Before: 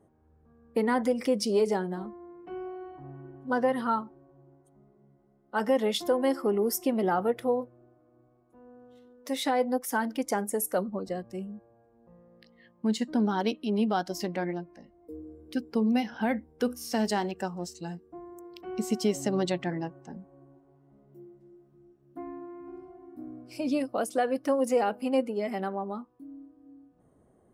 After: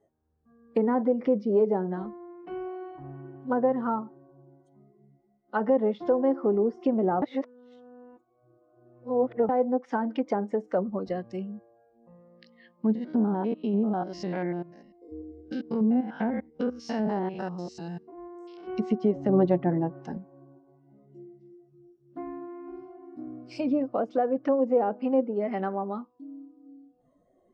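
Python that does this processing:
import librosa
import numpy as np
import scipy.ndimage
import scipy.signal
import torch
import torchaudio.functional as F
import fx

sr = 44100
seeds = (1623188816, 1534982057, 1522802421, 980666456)

y = fx.spec_steps(x, sr, hold_ms=100, at=(12.95, 18.7))
y = fx.edit(y, sr, fx.reverse_span(start_s=7.22, length_s=2.27),
    fx.clip_gain(start_s=19.29, length_s=0.89, db=4.5), tone=tone)
y = fx.noise_reduce_blind(y, sr, reduce_db=15)
y = fx.env_lowpass_down(y, sr, base_hz=860.0, full_db=-24.5)
y = scipy.signal.sosfilt(scipy.signal.butter(4, 6100.0, 'lowpass', fs=sr, output='sos'), y)
y = F.gain(torch.from_numpy(y), 2.5).numpy()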